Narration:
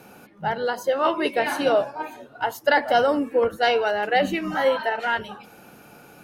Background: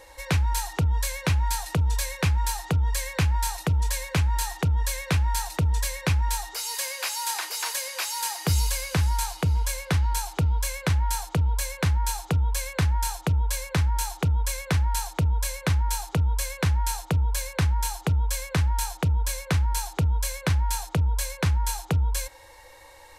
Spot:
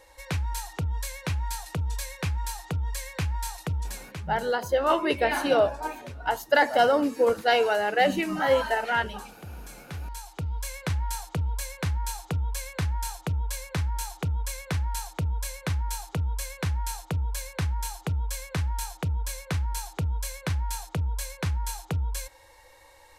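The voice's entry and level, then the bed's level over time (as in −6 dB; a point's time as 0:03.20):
3.85 s, −1.5 dB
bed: 0:03.76 −6 dB
0:04.41 −19 dB
0:09.50 −19 dB
0:10.77 −5 dB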